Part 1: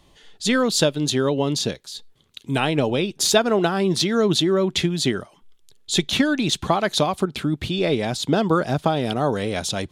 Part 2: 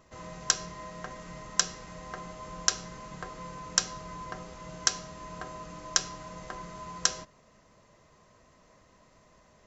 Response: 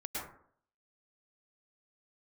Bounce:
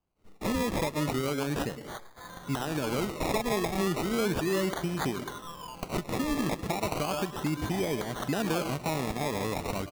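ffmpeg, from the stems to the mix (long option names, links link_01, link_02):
-filter_complex "[0:a]agate=range=-22dB:threshold=-48dB:ratio=16:detection=peak,volume=-6dB,asplit=2[link_01][link_02];[link_02]volume=-11.5dB[link_03];[1:a]equalizer=frequency=1700:width=0.46:gain=10.5,bandreject=frequency=630:width=12,adelay=2050,volume=-6.5dB[link_04];[2:a]atrim=start_sample=2205[link_05];[link_03][link_05]afir=irnorm=-1:irlink=0[link_06];[link_01][link_04][link_06]amix=inputs=3:normalize=0,acrusher=samples=23:mix=1:aa=0.000001:lfo=1:lforange=13.8:lforate=0.35,alimiter=limit=-21dB:level=0:latency=1:release=238"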